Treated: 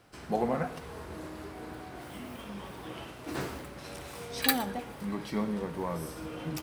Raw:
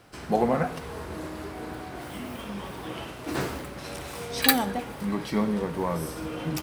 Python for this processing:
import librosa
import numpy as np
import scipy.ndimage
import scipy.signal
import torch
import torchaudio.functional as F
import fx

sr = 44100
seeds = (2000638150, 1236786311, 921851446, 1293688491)

y = x + 10.0 ** (-21.0 / 20.0) * np.pad(x, (int(116 * sr / 1000.0), 0))[:len(x)]
y = y * 10.0 ** (-6.0 / 20.0)